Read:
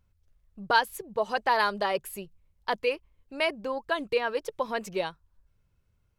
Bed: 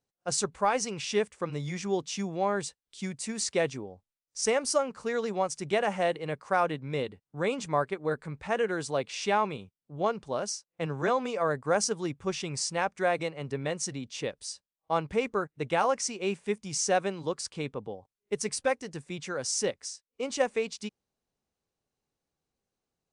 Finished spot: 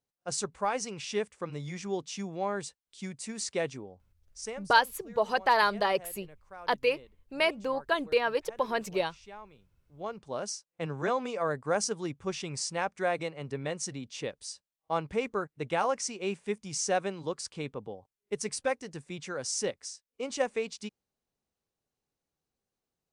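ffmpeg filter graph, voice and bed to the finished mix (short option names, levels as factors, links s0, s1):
-filter_complex "[0:a]adelay=4000,volume=1.06[s0];[1:a]volume=5.31,afade=t=out:st=4.08:d=0.59:silence=0.141254,afade=t=in:st=9.83:d=0.63:silence=0.11885[s1];[s0][s1]amix=inputs=2:normalize=0"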